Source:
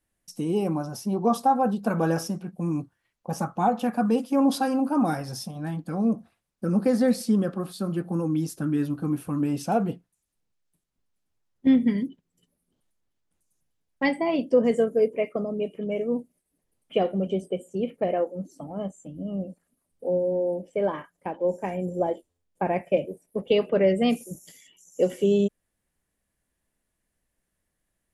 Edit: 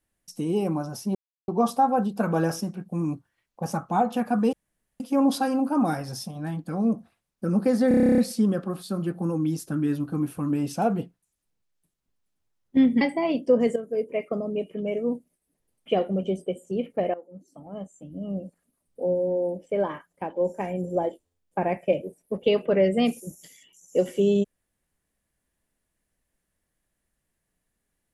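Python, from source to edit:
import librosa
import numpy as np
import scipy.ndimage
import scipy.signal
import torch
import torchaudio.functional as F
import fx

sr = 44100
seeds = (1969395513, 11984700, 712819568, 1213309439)

y = fx.edit(x, sr, fx.insert_silence(at_s=1.15, length_s=0.33),
    fx.insert_room_tone(at_s=4.2, length_s=0.47),
    fx.stutter(start_s=7.08, slice_s=0.03, count=11),
    fx.cut(start_s=11.91, length_s=2.14),
    fx.fade_in_from(start_s=14.8, length_s=0.55, floor_db=-12.5),
    fx.fade_in_from(start_s=18.18, length_s=1.28, floor_db=-17.5), tone=tone)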